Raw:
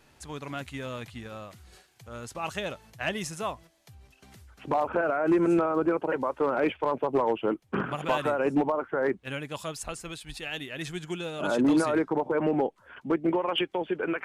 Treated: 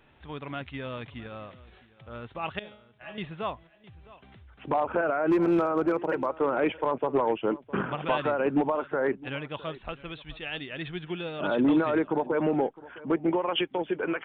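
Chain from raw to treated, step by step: downsampling 8000 Hz; 2.59–3.18 resonator 210 Hz, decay 0.56 s, harmonics all, mix 90%; on a send: echo 0.66 s -20 dB; 5.3–6.26 on the sum: hard clip -18.5 dBFS, distortion -32 dB

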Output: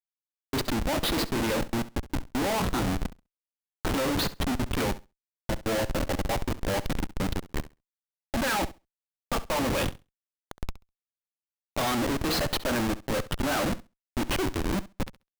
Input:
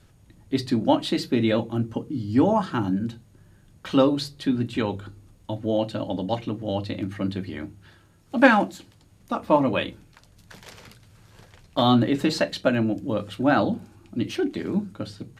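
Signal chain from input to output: weighting filter A; Schmitt trigger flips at -31 dBFS; flutter echo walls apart 11.5 m, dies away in 0.24 s; gain +3 dB

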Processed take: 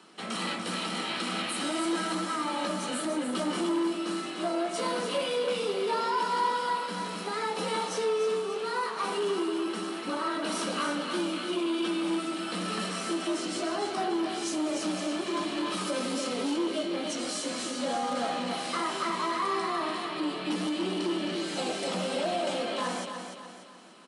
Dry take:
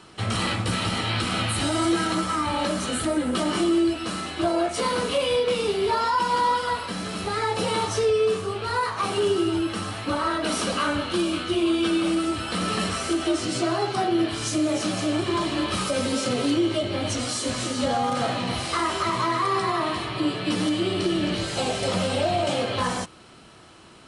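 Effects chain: steep high-pass 170 Hz 48 dB/oct; feedback echo 0.293 s, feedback 43%, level -7.5 dB; core saturation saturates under 650 Hz; gain -6 dB

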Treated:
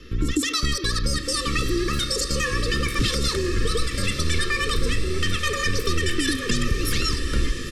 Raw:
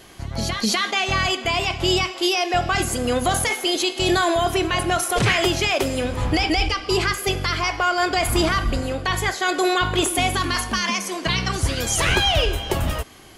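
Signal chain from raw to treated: Wiener smoothing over 9 samples; steep low-pass 6300 Hz 36 dB/oct; tone controls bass +10 dB, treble +3 dB; comb 3.8 ms, depth 51%; compressor, threshold -18 dBFS, peak gain reduction 12 dB; frequency shift -46 Hz; diffused feedback echo 1.833 s, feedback 54%, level -8 dB; speed mistake 45 rpm record played at 78 rpm; Butterworth band-stop 770 Hz, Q 0.86

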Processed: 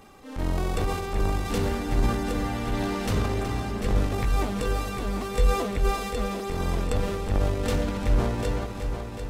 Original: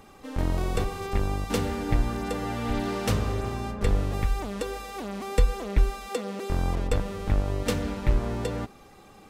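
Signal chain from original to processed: 4.17–5.71 doubler 16 ms -4 dB; transient shaper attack -6 dB, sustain +7 dB; multi-head echo 0.372 s, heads first and second, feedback 51%, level -10.5 dB

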